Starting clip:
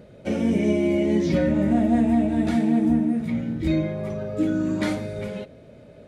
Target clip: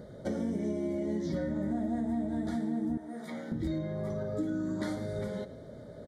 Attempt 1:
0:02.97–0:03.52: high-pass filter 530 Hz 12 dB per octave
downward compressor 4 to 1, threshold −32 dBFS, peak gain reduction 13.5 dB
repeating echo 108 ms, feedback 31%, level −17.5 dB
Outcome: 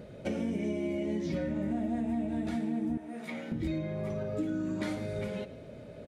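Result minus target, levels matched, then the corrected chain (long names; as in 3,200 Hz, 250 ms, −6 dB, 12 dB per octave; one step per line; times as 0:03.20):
2,000 Hz band +3.5 dB
0:02.97–0:03.52: high-pass filter 530 Hz 12 dB per octave
downward compressor 4 to 1, threshold −32 dBFS, peak gain reduction 13.5 dB
Butterworth band-reject 2,600 Hz, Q 1.9
repeating echo 108 ms, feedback 31%, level −17.5 dB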